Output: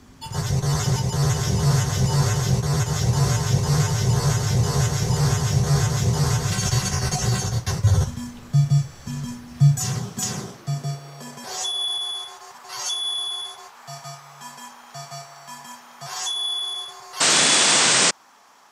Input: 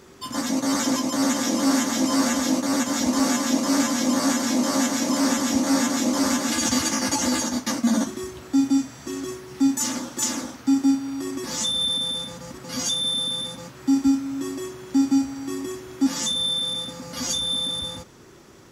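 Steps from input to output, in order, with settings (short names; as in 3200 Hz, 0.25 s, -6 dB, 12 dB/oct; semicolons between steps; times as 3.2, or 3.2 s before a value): high-pass sweep 180 Hz -> 1000 Hz, 9.26–12.06; painted sound noise, 17.2–18.11, 250–9100 Hz -15 dBFS; frequency shift -130 Hz; gain -2 dB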